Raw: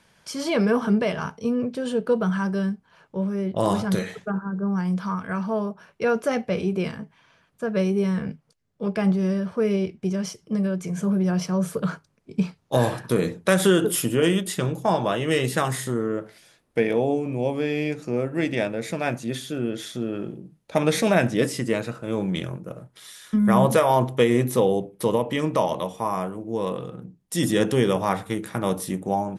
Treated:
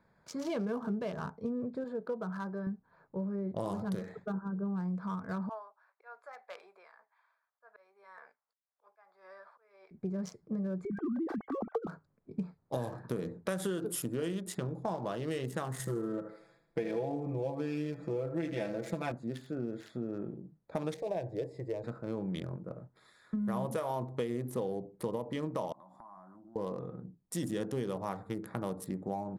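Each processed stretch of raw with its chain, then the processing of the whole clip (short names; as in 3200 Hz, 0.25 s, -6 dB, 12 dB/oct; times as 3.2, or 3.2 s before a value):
1.84–2.67 LPF 3300 Hz 6 dB/oct + low shelf 370 Hz -10 dB
5.49–9.91 HPF 800 Hz 24 dB/oct + auto swell 0.317 s + tremolo 1.8 Hz, depth 59%
10.85–11.88 sine-wave speech + comb 2.6 ms, depth 40%
15.79–19.12 comb 6 ms, depth 97% + thinning echo 78 ms, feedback 49%, high-pass 350 Hz, level -9 dB
20.94–21.84 LPF 2500 Hz 6 dB/oct + fixed phaser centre 560 Hz, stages 4
25.72–26.56 HPF 230 Hz + compressor 20:1, threshold -37 dBFS + fixed phaser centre 1100 Hz, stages 4
whole clip: Wiener smoothing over 15 samples; dynamic EQ 2300 Hz, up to -5 dB, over -44 dBFS, Q 1.3; compressor 4:1, threshold -26 dBFS; gain -6.5 dB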